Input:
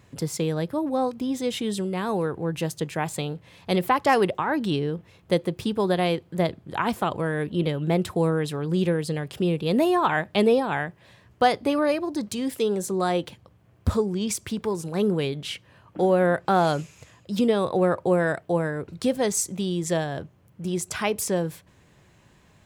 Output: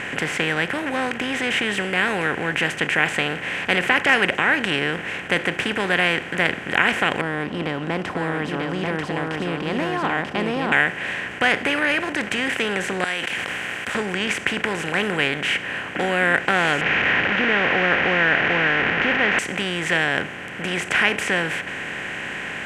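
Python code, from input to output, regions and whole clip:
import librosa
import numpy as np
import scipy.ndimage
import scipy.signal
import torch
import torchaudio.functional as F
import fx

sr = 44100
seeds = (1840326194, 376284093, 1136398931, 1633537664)

y = fx.chain(x, sr, fx.curve_eq(hz=(200.0, 290.0, 430.0, 1100.0, 1600.0, 2600.0, 5000.0, 7200.0), db=(0, 3, -7, 1, -24, -27, -6, -27)),
    fx.echo_single(ms=939, db=-5.5), at=(7.21, 10.72))
y = fx.chain(y, sr, fx.pre_emphasis(coefficient=0.97),
    fx.sustainer(db_per_s=24.0), at=(13.04, 13.95))
y = fx.chain(y, sr, fx.delta_mod(bps=32000, step_db=-25.0),
    fx.lowpass(hz=2600.0, slope=24), at=(16.81, 19.39))
y = fx.bin_compress(y, sr, power=0.4)
y = scipy.signal.sosfilt(scipy.signal.butter(2, 9200.0, 'lowpass', fs=sr, output='sos'), y)
y = fx.band_shelf(y, sr, hz=2100.0, db=16.0, octaves=1.3)
y = y * 10.0 ** (-8.0 / 20.0)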